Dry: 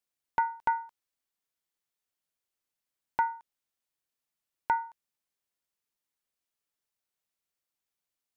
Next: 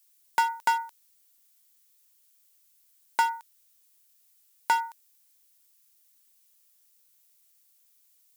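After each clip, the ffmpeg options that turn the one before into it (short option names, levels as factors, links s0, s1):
-filter_complex "[0:a]highpass=160,asplit=2[s0][s1];[s1]asoftclip=type=hard:threshold=0.0251,volume=0.668[s2];[s0][s2]amix=inputs=2:normalize=0,crystalizer=i=8.5:c=0,volume=0.75"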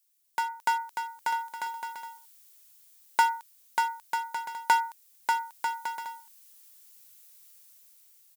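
-af "dynaudnorm=f=110:g=13:m=5.01,aecho=1:1:590|944|1156|1284|1360:0.631|0.398|0.251|0.158|0.1,volume=0.447"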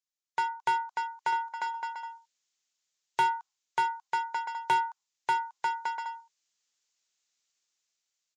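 -af "afftdn=nr=15:nf=-49,aresample=16000,aresample=44100,asoftclip=type=tanh:threshold=0.0794,volume=1.26"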